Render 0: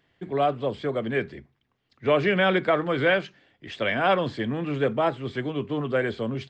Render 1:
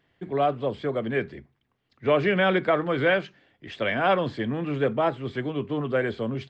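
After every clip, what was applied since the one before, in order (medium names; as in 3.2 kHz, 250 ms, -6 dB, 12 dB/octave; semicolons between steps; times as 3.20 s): treble shelf 4.1 kHz -5.5 dB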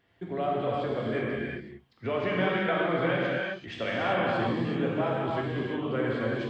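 compression 2:1, threshold -33 dBFS, peak gain reduction 9.5 dB; gated-style reverb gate 410 ms flat, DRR -5 dB; trim -2 dB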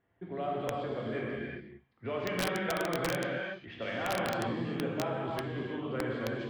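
feedback echo behind a high-pass 73 ms, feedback 60%, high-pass 2.5 kHz, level -15 dB; level-controlled noise filter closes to 1.6 kHz, open at -24.5 dBFS; integer overflow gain 17.5 dB; trim -5.5 dB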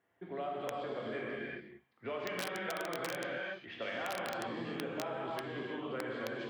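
high-pass 390 Hz 6 dB/octave; compression, threshold -36 dBFS, peak gain reduction 7.5 dB; trim +1 dB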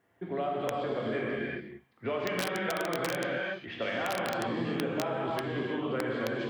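bass shelf 290 Hz +6 dB; trim +5.5 dB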